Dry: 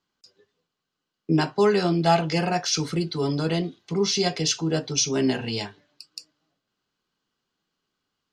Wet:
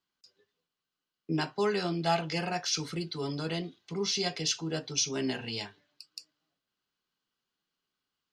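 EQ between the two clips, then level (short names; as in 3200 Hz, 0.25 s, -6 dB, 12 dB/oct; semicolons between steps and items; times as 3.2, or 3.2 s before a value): tilt shelf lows -4 dB, about 1500 Hz; bell 7800 Hz -4.5 dB 1.6 oct; -6.0 dB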